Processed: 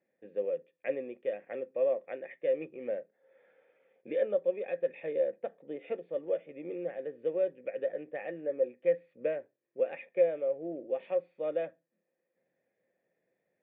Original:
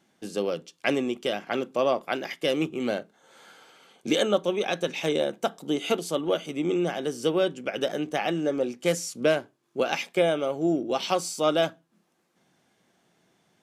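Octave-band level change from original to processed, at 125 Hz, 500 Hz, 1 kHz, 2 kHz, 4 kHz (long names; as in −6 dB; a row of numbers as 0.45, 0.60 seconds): −19.5 dB, −4.5 dB, −18.0 dB, −14.5 dB, below −30 dB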